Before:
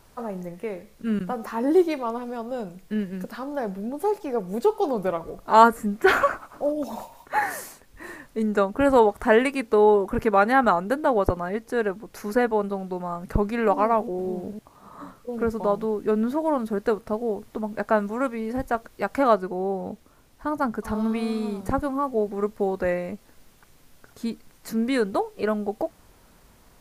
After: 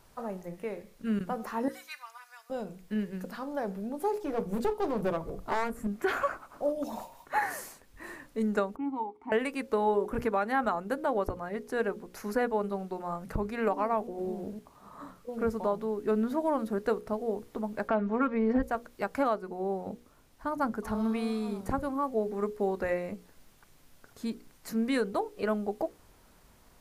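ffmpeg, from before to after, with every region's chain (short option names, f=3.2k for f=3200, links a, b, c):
-filter_complex "[0:a]asettb=1/sr,asplit=3[a][b][c];[a]atrim=end=1.684[d];[b]atrim=start=1.68:end=2.5,asetpts=PTS-STARTPTS,afade=t=in:d=0.004:c=qsin,afade=t=out:st=0.816:d=0.004:c=qsin,highpass=f=1.4k:w=0.5412,highpass=f=1.4k:w=1.3066,equalizer=f=3.3k:w=2.6:g=-7,aecho=1:1:4:0.63,atrim=end_sample=36162[e];[c]atrim=start=2.496[f];[d][e]acrossfade=d=0.004:c1=hsin:c2=qsin[g];[g][f]acrossfade=d=0.004:c1=qsin:c2=hsin,asettb=1/sr,asplit=3[h][i][j];[h]atrim=end=4.244[k];[i]atrim=start=4.24:end=5.87,asetpts=PTS-STARTPTS,afade=t=in:d=0.004:c=qsin,afade=t=out:st=1.626:d=0.004:c=qsin,lowshelf=f=280:g=9.5,bandreject=f=60:t=h:w=6,bandreject=f=120:t=h:w=6,bandreject=f=180:t=h:w=6,bandreject=f=240:t=h:w=6,bandreject=f=300:t=h:w=6,bandreject=f=360:t=h:w=6,bandreject=f=420:t=h:w=6,bandreject=f=480:t=h:w=6,aeval=exprs='clip(val(0),-1,0.0668)':c=same[l];[j]atrim=start=5.866[m];[k][l]acrossfade=d=0.004:c1=hsin:c2=qsin[n];[n][m]acrossfade=d=0.004:c1=qsin:c2=hsin,asettb=1/sr,asplit=3[o][p][q];[o]atrim=end=8.764[r];[p]atrim=start=8.76:end=9.32,asetpts=PTS-STARTPTS,afade=t=in:d=0.004:c=qsin,afade=t=out:st=0.556:d=0.004:c=qsin,asplit=3[s][t][u];[s]bandpass=f=300:t=q:w=8,volume=0dB[v];[t]bandpass=f=870:t=q:w=8,volume=-6dB[w];[u]bandpass=f=2.24k:t=q:w=8,volume=-9dB[x];[v][w][x]amix=inputs=3:normalize=0,equalizer=f=2.5k:w=4:g=-5.5[y];[q]atrim=start=9.316[z];[r][y]acrossfade=d=0.004:c1=hsin:c2=qsin[aa];[aa][z]acrossfade=d=0.004:c1=qsin:c2=hsin,asettb=1/sr,asplit=3[ab][ac][ad];[ab]atrim=end=17.884[ae];[ac]atrim=start=17.88:end=18.63,asetpts=PTS-STARTPTS,afade=t=in:d=0.004:c=qsin,afade=t=out:st=0.746:d=0.004:c=qsin,lowpass=2.7k,aecho=1:1:4.4:0.83,atrim=end_sample=33075,acontrast=26[af];[ad]atrim=start=18.626[ag];[ae][af]acrossfade=d=0.004:c1=hsin:c2=qsin[ah];[ah][ag]acrossfade=d=0.004:c1=qsin:c2=hsin,bandreject=f=60:t=h:w=6,bandreject=f=120:t=h:w=6,bandreject=f=180:t=h:w=6,bandreject=f=240:t=h:w=6,bandreject=f=300:t=h:w=6,bandreject=f=360:t=h:w=6,bandreject=f=420:t=h:w=6,bandreject=f=480:t=h:w=6,bandreject=f=540:t=h:w=6,alimiter=limit=-13.5dB:level=0:latency=1:release=414,volume=-4.5dB"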